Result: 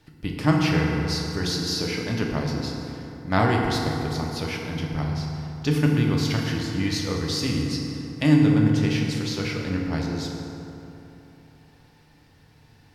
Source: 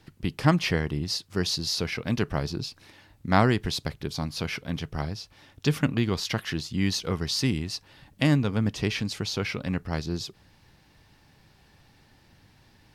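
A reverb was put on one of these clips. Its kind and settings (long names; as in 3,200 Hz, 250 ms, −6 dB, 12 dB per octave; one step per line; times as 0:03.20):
feedback delay network reverb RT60 3.3 s, high-frequency decay 0.45×, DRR −1.5 dB
level −2 dB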